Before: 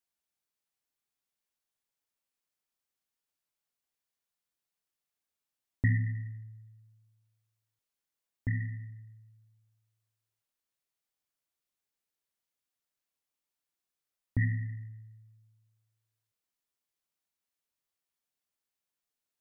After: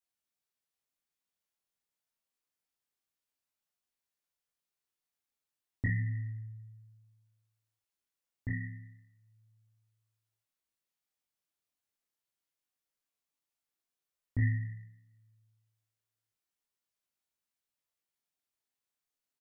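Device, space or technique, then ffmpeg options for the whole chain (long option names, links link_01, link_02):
double-tracked vocal: -filter_complex "[0:a]asplit=2[link_01][link_02];[link_02]adelay=35,volume=-6dB[link_03];[link_01][link_03]amix=inputs=2:normalize=0,flanger=delay=18.5:depth=5.2:speed=0.29"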